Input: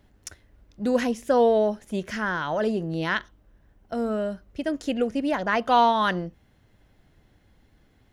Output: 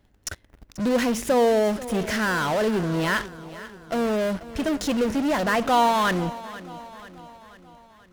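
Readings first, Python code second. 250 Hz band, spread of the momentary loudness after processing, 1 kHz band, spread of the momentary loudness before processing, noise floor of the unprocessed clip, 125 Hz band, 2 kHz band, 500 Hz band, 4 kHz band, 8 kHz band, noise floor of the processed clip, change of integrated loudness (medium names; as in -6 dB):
+3.0 dB, 19 LU, +0.5 dB, 13 LU, -61 dBFS, +4.5 dB, +2.5 dB, +1.0 dB, +3.5 dB, +10.5 dB, -59 dBFS, +1.5 dB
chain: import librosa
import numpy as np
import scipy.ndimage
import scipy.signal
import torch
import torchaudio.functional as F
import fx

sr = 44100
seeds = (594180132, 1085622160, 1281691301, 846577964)

p1 = fx.fuzz(x, sr, gain_db=46.0, gate_db=-50.0)
p2 = x + (p1 * 10.0 ** (-11.5 / 20.0))
p3 = fx.echo_feedback(p2, sr, ms=487, feedback_pct=54, wet_db=-16.5)
y = p3 * 10.0 ** (-3.0 / 20.0)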